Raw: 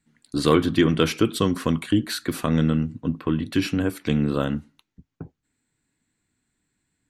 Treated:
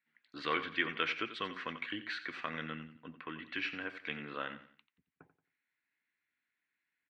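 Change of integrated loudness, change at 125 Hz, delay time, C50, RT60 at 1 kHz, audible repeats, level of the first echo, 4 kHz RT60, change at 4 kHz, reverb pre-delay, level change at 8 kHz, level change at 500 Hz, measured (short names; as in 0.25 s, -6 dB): -15.0 dB, -28.5 dB, 89 ms, none, none, 3, -13.0 dB, none, -10.5 dB, none, under -25 dB, -19.5 dB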